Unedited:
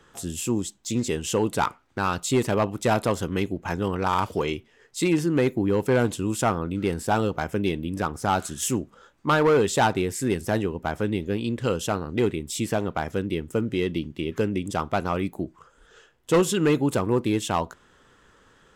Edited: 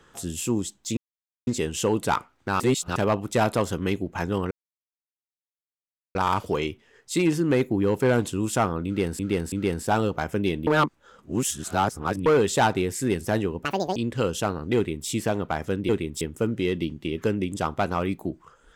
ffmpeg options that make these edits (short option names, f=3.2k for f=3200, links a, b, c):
-filter_complex "[0:a]asplit=13[a][b][c][d][e][f][g][h][i][j][k][l][m];[a]atrim=end=0.97,asetpts=PTS-STARTPTS,afade=t=out:st=0.966:d=0.004:c=hsin,apad=pad_dur=0.5[n];[b]atrim=start=0.97:end=2.102,asetpts=PTS-STARTPTS,afade=t=in:d=0.004:c=hsin[o];[c]atrim=start=2.098:end=2.462,asetpts=PTS-STARTPTS,areverse[p];[d]atrim=start=2.458:end=4.01,asetpts=PTS-STARTPTS,afade=t=out:st=1.548:d=0.004:c=hsin,apad=pad_dur=1.64[q];[e]atrim=start=4.01:end=7.052,asetpts=PTS-STARTPTS,afade=t=in:d=0.004:c=hsin[r];[f]atrim=start=6.718:end=7.052[s];[g]atrim=start=6.718:end=7.872[t];[h]atrim=start=7.868:end=9.462,asetpts=PTS-STARTPTS,areverse[u];[i]atrim=start=9.458:end=10.854[v];[j]atrim=start=10.85:end=11.42,asetpts=PTS-STARTPTS,asetrate=81144,aresample=44100,atrim=end_sample=13661,asetpts=PTS-STARTPTS[w];[k]atrim=start=11.416:end=13.352[x];[l]atrim=start=12.218:end=12.542[y];[m]atrim=start=13.348[z];[n][o]concat=n=2:v=0:a=1[aa];[aa][p]acrossfade=d=0.004:c1=hsin:c2=hsin[ab];[q][r]concat=n=2:v=0:a=1[ac];[ab][ac]acrossfade=d=0.004:c1=hsin:c2=hsin[ad];[ad][s]acrossfade=d=0.004:c1=hsin:c2=hsin[ae];[ae][t]acrossfade=d=0.004:c1=hsin:c2=hsin[af];[af][u]acrossfade=d=0.004:c1=hsin:c2=hsin[ag];[ag][v]acrossfade=d=0.004:c1=hsin:c2=hsin[ah];[ah][w]acrossfade=d=0.004:c1=hsin:c2=hsin[ai];[ai][x]acrossfade=d=0.004:c1=hsin:c2=hsin[aj];[aj][y]acrossfade=d=0.004:c1=hsin:c2=hsin[ak];[ak][z]acrossfade=d=0.004:c1=hsin:c2=hsin"